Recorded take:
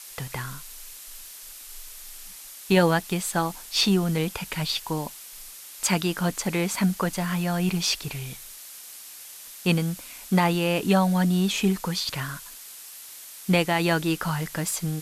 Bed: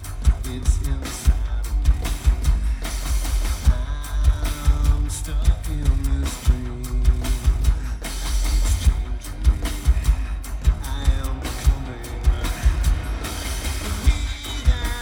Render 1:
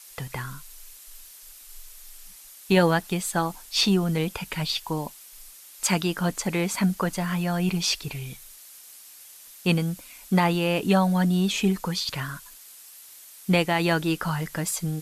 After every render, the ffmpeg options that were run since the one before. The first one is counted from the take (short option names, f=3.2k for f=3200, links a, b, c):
-af "afftdn=nr=6:nf=-43"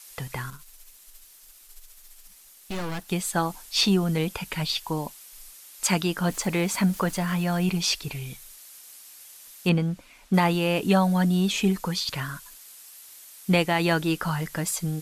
-filter_complex "[0:a]asettb=1/sr,asplit=3[a][b][c];[a]atrim=end=0.504[d];[b]atrim=start=0.5:end=3.09,asetpts=PTS-STARTPTS,afade=t=in:d=0.004:c=qsin,afade=t=out:st=2.586:d=0.004:c=qsin,aeval=exprs='(tanh(31.6*val(0)+0.8)-tanh(0.8))/31.6':c=same[e];[c]atrim=start=3.086[f];[d][e]acrossfade=d=0.004:c1=hsin:c2=qsin[g];[g][f]acrossfade=d=0.004:c1=qsin:c2=hsin,asettb=1/sr,asplit=3[h][i][j];[h]atrim=end=6.274[k];[i]atrim=start=6.27:end=7.66,asetpts=PTS-STARTPTS,afade=t=in:d=0.004:c=qsin,afade=t=out:st=1.386:d=0.004:c=qsin,aeval=exprs='val(0)+0.5*0.00944*sgn(val(0))':c=same[l];[j]atrim=start=7.656[m];[k][l]acrossfade=d=0.004:c1=hsin:c2=qsin[n];[n][m]acrossfade=d=0.004:c1=qsin:c2=hsin,asettb=1/sr,asplit=3[o][p][q];[o]atrim=end=9.694[r];[p]atrim=start=9.69:end=10.34,asetpts=PTS-STARTPTS,afade=t=in:d=0.004:c=qsin,afade=t=out:st=0.646:d=0.004:c=qsin,aemphasis=mode=reproduction:type=75fm[s];[q]atrim=start=10.336[t];[r][s]acrossfade=d=0.004:c1=hsin:c2=qsin[u];[u][t]acrossfade=d=0.004:c1=qsin:c2=hsin"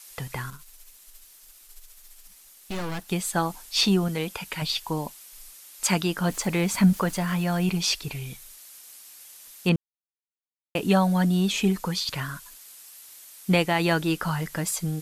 -filter_complex "[0:a]asettb=1/sr,asplit=3[a][b][c];[a]atrim=end=4.084[d];[b]atrim=start=4.08:end=4.62,asetpts=PTS-STARTPTS,afade=t=in:d=0.004:c=qsin,afade=t=out:st=0.536:d=0.004:c=qsin,lowshelf=f=280:g=-7.5[e];[c]atrim=start=4.616[f];[d][e]acrossfade=d=0.004:c1=hsin:c2=qsin[g];[g][f]acrossfade=d=0.004:c1=qsin:c2=hsin,asettb=1/sr,asplit=3[h][i][j];[h]atrim=end=6.464[k];[i]atrim=start=6.46:end=6.93,asetpts=PTS-STARTPTS,afade=t=in:d=0.004:c=qsin,afade=t=out:st=0.466:d=0.004:c=qsin,asubboost=boost=11.5:cutoff=250[l];[j]atrim=start=6.926[m];[k][l]acrossfade=d=0.004:c1=hsin:c2=qsin[n];[n][m]acrossfade=d=0.004:c1=qsin:c2=hsin,asplit=3[o][p][q];[o]atrim=end=9.76,asetpts=PTS-STARTPTS,afade=t=out:st=9.756:d=0.004:c=hsin[r];[p]atrim=start=9.76:end=10.75,asetpts=PTS-STARTPTS,volume=0[s];[q]atrim=start=10.75,asetpts=PTS-STARTPTS,afade=t=in:d=0.004:c=hsin[t];[r][s][t]concat=n=3:v=0:a=1"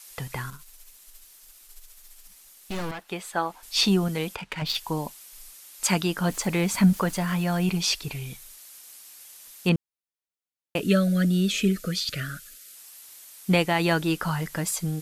-filter_complex "[0:a]asettb=1/sr,asplit=3[a][b][c];[a]atrim=end=2.914[d];[b]atrim=start=2.91:end=3.63,asetpts=PTS-STARTPTS,afade=t=in:d=0.004:c=qsin,afade=t=out:st=0.716:d=0.004:c=qsin,bass=f=250:g=-15,treble=f=4k:g=-11[e];[c]atrim=start=3.626[f];[d][e]acrossfade=d=0.004:c1=hsin:c2=qsin[g];[g][f]acrossfade=d=0.004:c1=qsin:c2=hsin,asettb=1/sr,asplit=3[h][i][j];[h]atrim=end=4.354[k];[i]atrim=start=4.35:end=4.77,asetpts=PTS-STARTPTS,afade=t=in:d=0.004:c=qsin,afade=t=out:st=0.416:d=0.004:c=qsin,adynamicsmooth=sensitivity=6:basefreq=2.2k[l];[j]atrim=start=4.766[m];[k][l]acrossfade=d=0.004:c1=hsin:c2=qsin[n];[n][m]acrossfade=d=0.004:c1=qsin:c2=hsin,asettb=1/sr,asplit=3[o][p][q];[o]atrim=end=10.804[r];[p]atrim=start=10.8:end=12.75,asetpts=PTS-STARTPTS,afade=t=in:d=0.004:c=qsin,afade=t=out:st=1.946:d=0.004:c=qsin,asuperstop=centerf=900:order=12:qfactor=1.7[s];[q]atrim=start=12.746[t];[r][s]acrossfade=d=0.004:c1=hsin:c2=qsin[u];[u][t]acrossfade=d=0.004:c1=qsin:c2=hsin"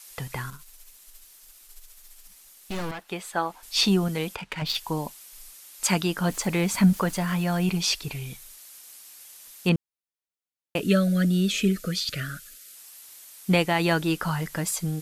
-af anull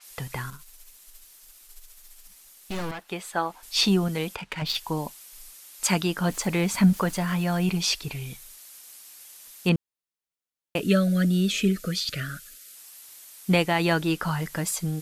-af "adynamicequalizer=threshold=0.0112:dfrequency=6000:dqfactor=0.7:tfrequency=6000:tqfactor=0.7:attack=5:release=100:ratio=0.375:range=1.5:mode=cutabove:tftype=highshelf"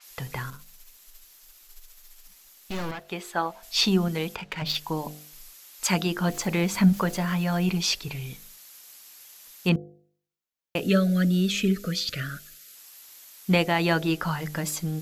-af "equalizer=f=9.2k:t=o:w=0.21:g=-12,bandreject=f=50.25:t=h:w=4,bandreject=f=100.5:t=h:w=4,bandreject=f=150.75:t=h:w=4,bandreject=f=201:t=h:w=4,bandreject=f=251.25:t=h:w=4,bandreject=f=301.5:t=h:w=4,bandreject=f=351.75:t=h:w=4,bandreject=f=402:t=h:w=4,bandreject=f=452.25:t=h:w=4,bandreject=f=502.5:t=h:w=4,bandreject=f=552.75:t=h:w=4,bandreject=f=603:t=h:w=4,bandreject=f=653.25:t=h:w=4,bandreject=f=703.5:t=h:w=4,bandreject=f=753.75:t=h:w=4,bandreject=f=804:t=h:w=4"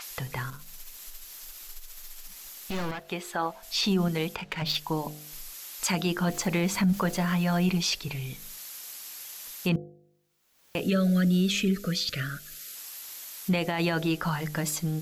-af "alimiter=limit=-17.5dB:level=0:latency=1:release=30,acompressor=mode=upward:threshold=-33dB:ratio=2.5"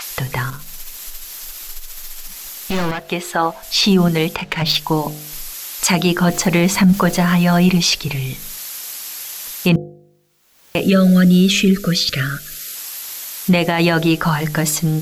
-af "volume=12dB"